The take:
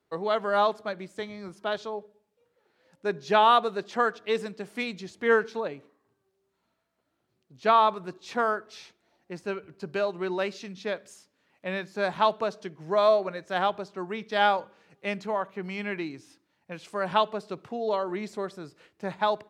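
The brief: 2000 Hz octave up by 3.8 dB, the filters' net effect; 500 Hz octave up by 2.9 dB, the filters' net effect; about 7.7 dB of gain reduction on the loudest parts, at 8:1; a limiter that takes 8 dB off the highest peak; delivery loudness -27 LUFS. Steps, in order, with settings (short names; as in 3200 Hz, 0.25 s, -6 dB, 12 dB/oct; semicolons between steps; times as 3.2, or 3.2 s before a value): bell 500 Hz +3.5 dB; bell 2000 Hz +5 dB; compressor 8:1, threshold -21 dBFS; gain +4 dB; limiter -14 dBFS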